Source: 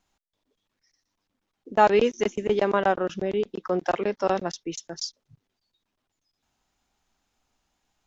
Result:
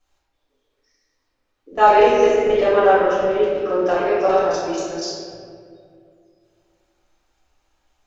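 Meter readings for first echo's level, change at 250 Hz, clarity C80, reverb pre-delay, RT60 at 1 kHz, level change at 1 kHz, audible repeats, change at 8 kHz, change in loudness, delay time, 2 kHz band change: none, +4.0 dB, 0.0 dB, 4 ms, 1.9 s, +8.0 dB, none, n/a, +8.0 dB, none, +6.5 dB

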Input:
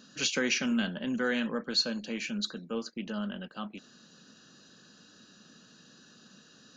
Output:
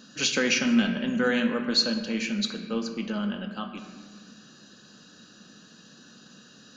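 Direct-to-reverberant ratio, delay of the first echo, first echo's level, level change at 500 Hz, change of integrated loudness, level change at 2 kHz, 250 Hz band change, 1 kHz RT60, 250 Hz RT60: 6.0 dB, none, none, +5.5 dB, +5.5 dB, +5.0 dB, +6.5 dB, 1.5 s, 2.5 s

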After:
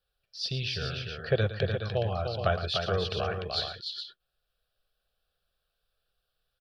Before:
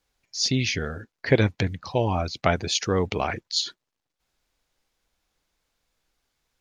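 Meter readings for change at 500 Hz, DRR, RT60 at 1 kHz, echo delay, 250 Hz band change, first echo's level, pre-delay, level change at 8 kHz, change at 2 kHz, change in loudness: -4.0 dB, none, none, 0.112 s, -11.5 dB, -12.0 dB, none, -19.0 dB, -6.0 dB, -5.5 dB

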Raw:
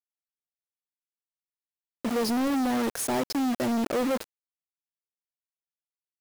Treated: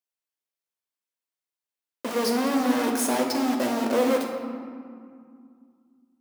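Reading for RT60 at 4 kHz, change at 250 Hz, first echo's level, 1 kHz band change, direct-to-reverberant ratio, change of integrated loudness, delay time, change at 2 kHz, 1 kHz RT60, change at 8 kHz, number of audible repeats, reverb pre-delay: 1.1 s, +2.0 dB, none, +3.5 dB, 1.0 dB, +2.5 dB, none, +4.0 dB, 2.3 s, +3.5 dB, none, 12 ms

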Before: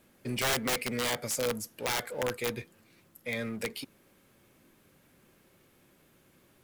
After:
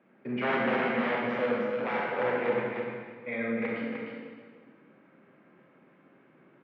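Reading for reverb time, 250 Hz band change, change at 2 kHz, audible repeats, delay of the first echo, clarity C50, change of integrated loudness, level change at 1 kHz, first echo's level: 1.6 s, +6.0 dB, +3.5 dB, 1, 0.303 s, -2.5 dB, +2.0 dB, +5.5 dB, -5.0 dB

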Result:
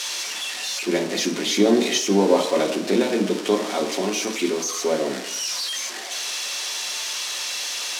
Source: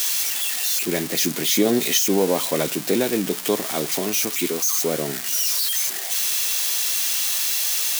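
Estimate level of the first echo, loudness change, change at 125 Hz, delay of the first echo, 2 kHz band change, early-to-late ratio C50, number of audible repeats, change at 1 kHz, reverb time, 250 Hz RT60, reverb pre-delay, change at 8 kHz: none, -2.5 dB, -1.0 dB, none, +0.5 dB, 9.0 dB, none, +3.5 dB, 0.70 s, 0.55 s, 3 ms, -5.0 dB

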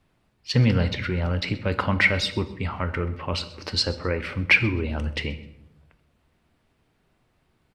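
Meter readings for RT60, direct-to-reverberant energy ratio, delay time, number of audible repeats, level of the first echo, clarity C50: 0.80 s, 10.5 dB, 0.129 s, 2, -21.0 dB, 14.0 dB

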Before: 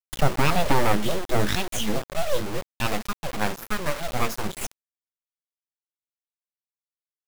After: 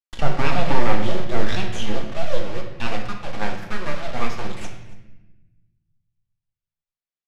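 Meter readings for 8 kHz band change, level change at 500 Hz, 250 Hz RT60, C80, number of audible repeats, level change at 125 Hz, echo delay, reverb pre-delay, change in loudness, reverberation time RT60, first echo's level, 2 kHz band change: -8.5 dB, 0.0 dB, 1.8 s, 8.5 dB, 1, +0.5 dB, 0.279 s, 3 ms, -0.5 dB, 1.0 s, -21.0 dB, 0.0 dB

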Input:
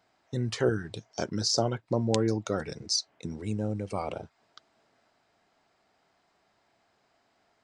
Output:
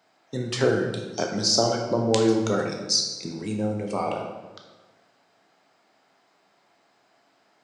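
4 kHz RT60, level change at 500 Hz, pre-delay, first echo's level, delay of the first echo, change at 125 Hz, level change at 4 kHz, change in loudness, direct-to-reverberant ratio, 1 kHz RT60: 0.85 s, +6.5 dB, 12 ms, none, none, +1.0 dB, +6.5 dB, +6.0 dB, 2.0 dB, 1.2 s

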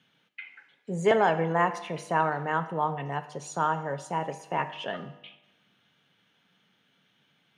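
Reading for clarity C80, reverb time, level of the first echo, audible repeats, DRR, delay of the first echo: 16.0 dB, 1.0 s, none, none, 11.0 dB, none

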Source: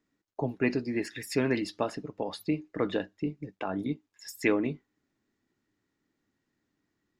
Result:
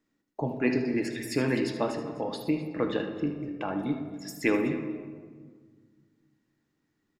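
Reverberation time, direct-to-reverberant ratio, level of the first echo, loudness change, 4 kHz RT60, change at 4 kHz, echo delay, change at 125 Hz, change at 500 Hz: 1.6 s, 4.0 dB, -11.0 dB, +1.5 dB, 0.85 s, +1.0 dB, 76 ms, +2.0 dB, +1.5 dB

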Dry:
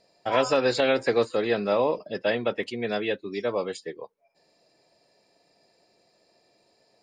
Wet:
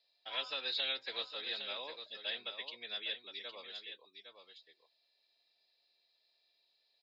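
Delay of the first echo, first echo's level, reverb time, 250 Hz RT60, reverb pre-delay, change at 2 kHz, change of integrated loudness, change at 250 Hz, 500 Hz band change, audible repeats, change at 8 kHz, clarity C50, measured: 0.81 s, -8.5 dB, none, none, none, -12.0 dB, -13.5 dB, -31.0 dB, -26.0 dB, 1, n/a, none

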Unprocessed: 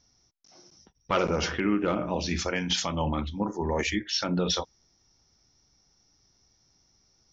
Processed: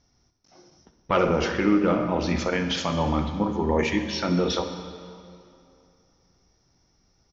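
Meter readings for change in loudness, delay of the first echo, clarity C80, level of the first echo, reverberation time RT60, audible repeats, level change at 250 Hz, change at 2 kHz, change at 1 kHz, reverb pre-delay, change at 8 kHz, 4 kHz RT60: +3.5 dB, 64 ms, 9.0 dB, -14.5 dB, 2.6 s, 1, +5.5 dB, +2.5 dB, +4.0 dB, 9 ms, n/a, 2.0 s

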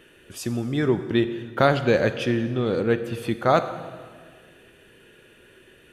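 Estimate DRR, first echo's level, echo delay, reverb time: 10.5 dB, none, none, 1.7 s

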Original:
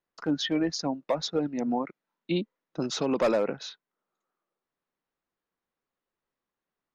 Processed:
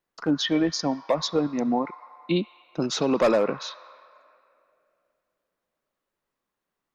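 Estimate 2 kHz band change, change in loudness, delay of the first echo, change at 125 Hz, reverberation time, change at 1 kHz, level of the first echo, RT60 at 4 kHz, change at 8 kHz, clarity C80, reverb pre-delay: +4.0 dB, +4.0 dB, none, +4.0 dB, 2.7 s, +4.5 dB, none, 1.8 s, n/a, 12.0 dB, 8 ms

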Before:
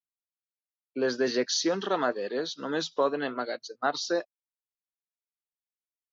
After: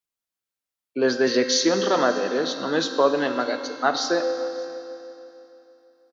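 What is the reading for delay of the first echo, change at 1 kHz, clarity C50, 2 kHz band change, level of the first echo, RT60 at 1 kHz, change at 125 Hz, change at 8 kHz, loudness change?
0.574 s, +7.0 dB, 7.0 dB, +7.0 dB, -23.0 dB, 2.9 s, +6.5 dB, n/a, +6.5 dB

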